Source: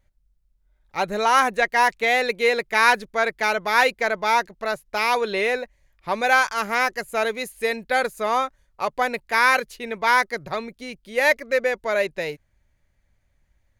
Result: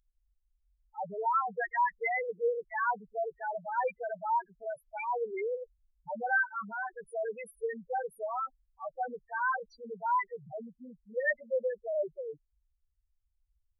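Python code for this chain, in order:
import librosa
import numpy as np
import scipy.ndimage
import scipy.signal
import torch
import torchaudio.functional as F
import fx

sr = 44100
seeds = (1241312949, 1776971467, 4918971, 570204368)

y = fx.spec_topn(x, sr, count=2)
y = fx.high_shelf(y, sr, hz=2400.0, db=11.0)
y = y * librosa.db_to_amplitude(-8.0)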